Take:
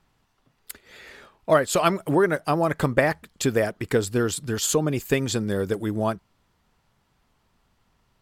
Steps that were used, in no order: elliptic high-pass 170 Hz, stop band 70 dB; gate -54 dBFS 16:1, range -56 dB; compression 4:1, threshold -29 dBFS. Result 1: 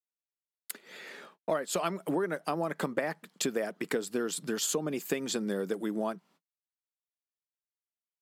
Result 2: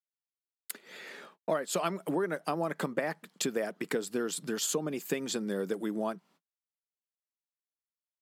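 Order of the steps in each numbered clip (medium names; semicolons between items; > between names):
gate > elliptic high-pass > compression; gate > compression > elliptic high-pass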